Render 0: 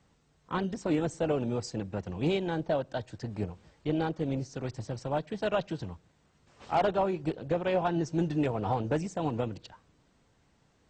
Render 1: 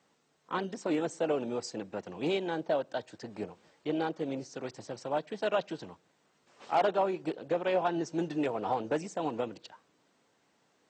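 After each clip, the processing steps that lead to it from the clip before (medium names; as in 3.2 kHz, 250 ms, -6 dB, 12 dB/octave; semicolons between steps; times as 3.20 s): high-pass 280 Hz 12 dB/octave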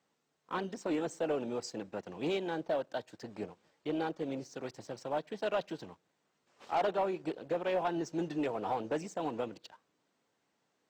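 waveshaping leveller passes 1; trim -6 dB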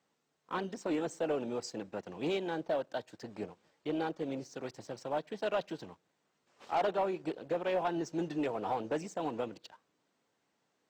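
no audible change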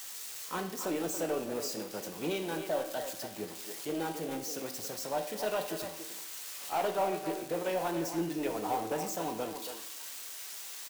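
zero-crossing glitches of -32.5 dBFS; speakerphone echo 280 ms, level -6 dB; reverberation RT60 0.70 s, pre-delay 5 ms, DRR 5 dB; trim -1 dB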